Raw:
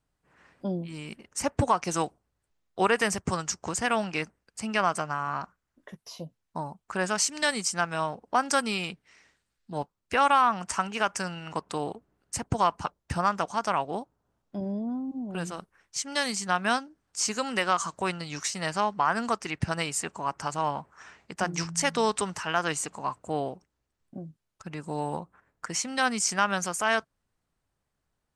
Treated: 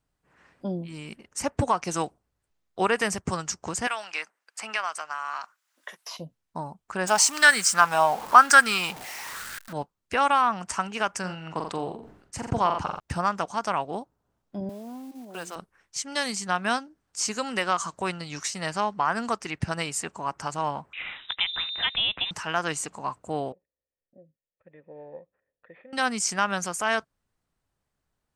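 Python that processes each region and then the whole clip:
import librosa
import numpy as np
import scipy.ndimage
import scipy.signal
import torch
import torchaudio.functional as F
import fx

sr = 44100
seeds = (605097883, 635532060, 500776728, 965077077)

y = fx.chain(x, sr, fx.highpass(hz=960.0, slope=12),
    fx.band_squash(depth_pct=70), at=(3.87, 6.17))
y = fx.chain(y, sr, fx.zero_step(step_db=-37.5),
    fx.tilt_eq(slope=2.0),
    fx.bell_lfo(hz=1.0, low_hz=750.0, high_hz=1600.0, db=15), at=(7.07, 9.73))
y = fx.chain(y, sr, fx.high_shelf(hz=6800.0, db=-12.0),
    fx.room_flutter(wall_m=7.4, rt60_s=0.23),
    fx.sustainer(db_per_s=77.0), at=(11.19, 13.0))
y = fx.chain(y, sr, fx.block_float(bits=5),
    fx.highpass(hz=380.0, slope=12), at=(14.69, 15.56))
y = fx.chain(y, sr, fx.freq_invert(carrier_hz=3800),
    fx.band_squash(depth_pct=70), at=(20.93, 22.31))
y = fx.chain(y, sr, fx.sample_sort(block=8),
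    fx.formant_cascade(vowel='e'), at=(23.52, 25.93))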